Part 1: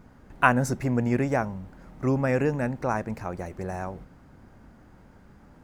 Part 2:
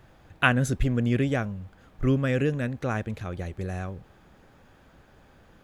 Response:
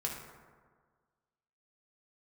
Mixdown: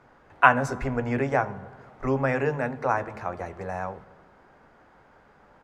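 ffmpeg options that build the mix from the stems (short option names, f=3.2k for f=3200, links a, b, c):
-filter_complex "[0:a]highpass=600,volume=3dB,asplit=2[a][b];[b]volume=-15dB[c];[1:a]equalizer=f=420:t=o:w=0.77:g=5.5,adelay=14,volume=-12dB,asplit=2[d][e];[e]volume=-6.5dB[f];[2:a]atrim=start_sample=2205[g];[c][f]amix=inputs=2:normalize=0[h];[h][g]afir=irnorm=-1:irlink=0[i];[a][d][i]amix=inputs=3:normalize=0,aemphasis=mode=reproduction:type=75fm"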